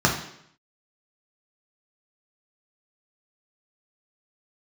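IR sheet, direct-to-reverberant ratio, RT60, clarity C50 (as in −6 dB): −1.5 dB, 0.70 s, 6.5 dB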